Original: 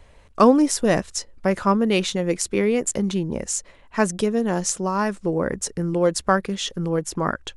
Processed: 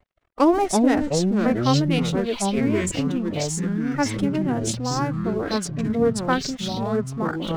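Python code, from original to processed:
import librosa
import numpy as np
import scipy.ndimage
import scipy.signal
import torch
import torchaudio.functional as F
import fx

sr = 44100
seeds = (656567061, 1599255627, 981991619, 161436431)

y = fx.wiener(x, sr, points=9)
y = fx.echo_pitch(y, sr, ms=197, semitones=-5, count=3, db_per_echo=-3.0)
y = np.sign(y) * np.maximum(np.abs(y) - 10.0 ** (-44.5 / 20.0), 0.0)
y = fx.pitch_keep_formants(y, sr, semitones=5.0)
y = y * 10.0 ** (-2.5 / 20.0)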